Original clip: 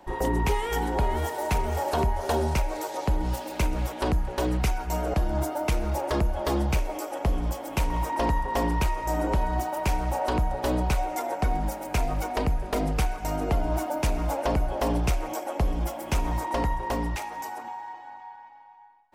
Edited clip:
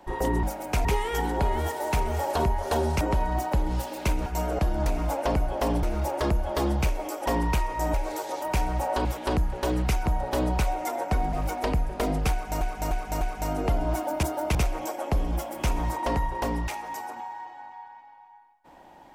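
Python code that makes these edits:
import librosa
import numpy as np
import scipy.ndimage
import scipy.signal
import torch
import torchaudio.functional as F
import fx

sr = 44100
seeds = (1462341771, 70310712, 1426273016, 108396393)

y = fx.edit(x, sr, fx.swap(start_s=2.59, length_s=0.48, other_s=9.22, other_length_s=0.52),
    fx.move(start_s=3.8, length_s=1.01, to_s=10.37),
    fx.swap(start_s=5.41, length_s=0.32, other_s=14.06, other_length_s=0.97),
    fx.cut(start_s=7.16, length_s=1.38),
    fx.move(start_s=11.64, length_s=0.42, to_s=0.43),
    fx.repeat(start_s=13.04, length_s=0.3, count=4), tone=tone)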